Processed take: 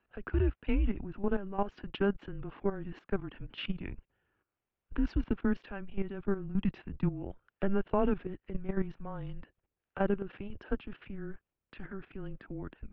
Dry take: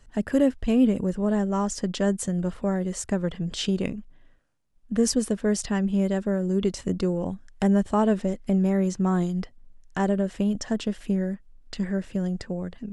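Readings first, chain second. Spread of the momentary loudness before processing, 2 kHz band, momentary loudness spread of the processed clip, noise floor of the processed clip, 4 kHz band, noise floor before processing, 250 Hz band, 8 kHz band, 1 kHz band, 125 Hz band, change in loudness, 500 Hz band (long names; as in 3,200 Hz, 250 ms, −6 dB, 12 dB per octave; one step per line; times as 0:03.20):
9 LU, −5.5 dB, 14 LU, below −85 dBFS, −12.5 dB, −54 dBFS, −12.0 dB, below −40 dB, −8.0 dB, −9.0 dB, −10.0 dB, −9.0 dB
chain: single-sideband voice off tune −200 Hz 240–3,200 Hz
output level in coarse steps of 13 dB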